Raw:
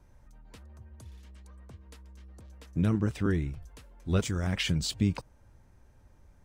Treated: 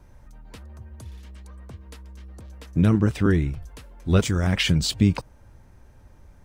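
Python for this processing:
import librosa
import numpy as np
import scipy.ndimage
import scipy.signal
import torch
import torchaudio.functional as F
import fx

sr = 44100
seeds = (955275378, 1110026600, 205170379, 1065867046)

y = fx.peak_eq(x, sr, hz=7100.0, db=-2.0, octaves=0.77)
y = F.gain(torch.from_numpy(y), 8.0).numpy()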